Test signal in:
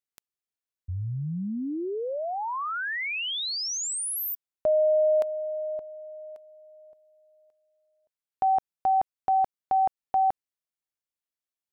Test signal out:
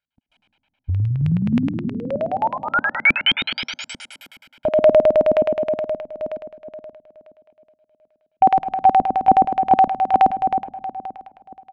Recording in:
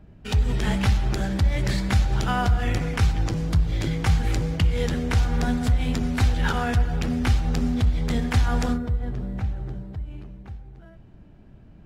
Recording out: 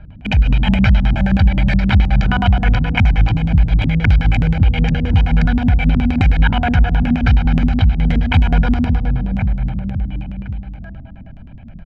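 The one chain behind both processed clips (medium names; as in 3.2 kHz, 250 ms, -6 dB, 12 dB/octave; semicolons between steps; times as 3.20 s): drifting ripple filter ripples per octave 0.58, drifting -2.2 Hz, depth 7 dB; in parallel at -0.5 dB: compression, threshold -29 dBFS; on the sum: comb 1.3 ms, depth 91%; on a send: feedback delay 179 ms, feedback 42%, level -22 dB; on the sum: algorithmic reverb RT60 2.9 s, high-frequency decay 0.7×, pre-delay 100 ms, DRR 6 dB; LFO low-pass square 9.5 Hz 250–2600 Hz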